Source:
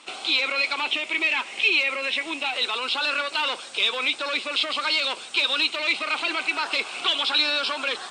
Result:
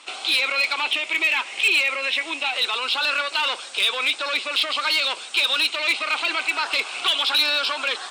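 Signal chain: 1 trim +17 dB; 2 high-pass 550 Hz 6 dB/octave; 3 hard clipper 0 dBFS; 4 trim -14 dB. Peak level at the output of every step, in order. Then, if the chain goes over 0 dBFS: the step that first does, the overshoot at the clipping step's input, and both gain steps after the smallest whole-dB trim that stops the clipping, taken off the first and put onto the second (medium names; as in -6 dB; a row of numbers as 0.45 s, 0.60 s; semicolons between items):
+7.5 dBFS, +7.5 dBFS, 0.0 dBFS, -14.0 dBFS; step 1, 7.5 dB; step 1 +9 dB, step 4 -6 dB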